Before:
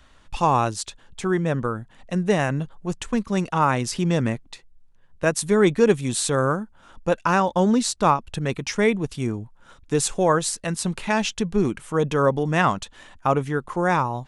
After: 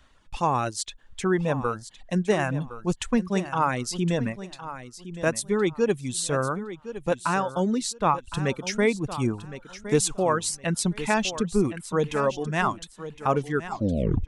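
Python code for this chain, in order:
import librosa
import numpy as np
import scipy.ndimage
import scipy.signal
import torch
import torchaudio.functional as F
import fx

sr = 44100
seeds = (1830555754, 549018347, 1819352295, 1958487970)

p1 = fx.tape_stop_end(x, sr, length_s=0.72)
p2 = fx.rider(p1, sr, range_db=4, speed_s=0.5)
p3 = fx.dereverb_blind(p2, sr, rt60_s=1.4)
p4 = p3 + fx.echo_feedback(p3, sr, ms=1063, feedback_pct=22, wet_db=-13, dry=0)
y = F.gain(torch.from_numpy(p4), -2.0).numpy()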